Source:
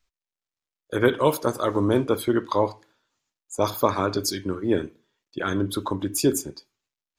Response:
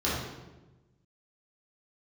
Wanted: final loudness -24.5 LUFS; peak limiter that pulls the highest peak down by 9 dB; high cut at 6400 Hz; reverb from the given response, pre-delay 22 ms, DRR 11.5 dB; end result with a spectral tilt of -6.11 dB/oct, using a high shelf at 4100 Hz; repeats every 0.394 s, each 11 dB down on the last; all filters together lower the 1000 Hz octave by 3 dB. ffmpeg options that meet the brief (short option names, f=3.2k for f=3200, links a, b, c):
-filter_complex "[0:a]lowpass=6.4k,equalizer=f=1k:t=o:g=-3,highshelf=f=4.1k:g=-7.5,alimiter=limit=-15dB:level=0:latency=1,aecho=1:1:394|788|1182:0.282|0.0789|0.0221,asplit=2[a][b];[1:a]atrim=start_sample=2205,adelay=22[c];[b][c]afir=irnorm=-1:irlink=0,volume=-22.5dB[d];[a][d]amix=inputs=2:normalize=0,volume=3dB"